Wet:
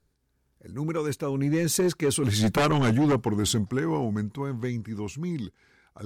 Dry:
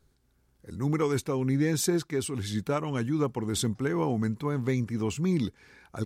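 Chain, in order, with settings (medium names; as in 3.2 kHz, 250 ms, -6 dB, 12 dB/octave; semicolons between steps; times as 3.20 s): Doppler pass-by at 2.65 s, 17 m/s, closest 5.9 m; sine folder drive 9 dB, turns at -17.5 dBFS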